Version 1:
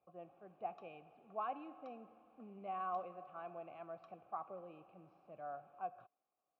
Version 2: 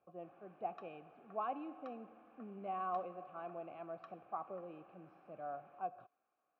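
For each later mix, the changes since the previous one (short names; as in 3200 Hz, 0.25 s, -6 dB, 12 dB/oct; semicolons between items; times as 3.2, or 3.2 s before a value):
background: add bell 1700 Hz +14.5 dB 1.1 oct; master: add bell 300 Hz +5.5 dB 1.9 oct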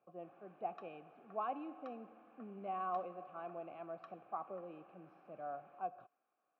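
master: add HPF 120 Hz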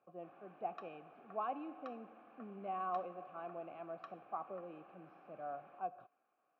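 background +4.0 dB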